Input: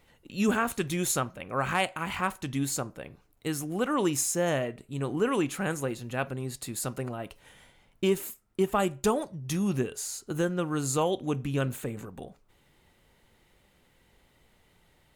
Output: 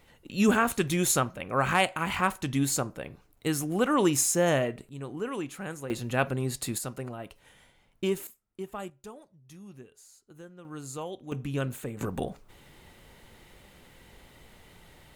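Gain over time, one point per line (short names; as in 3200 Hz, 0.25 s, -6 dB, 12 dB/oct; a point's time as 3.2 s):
+3 dB
from 4.89 s -7 dB
from 5.9 s +4.5 dB
from 6.78 s -3 dB
from 8.27 s -12 dB
from 8.9 s -19.5 dB
from 10.65 s -10.5 dB
from 11.32 s -2 dB
from 12.01 s +10 dB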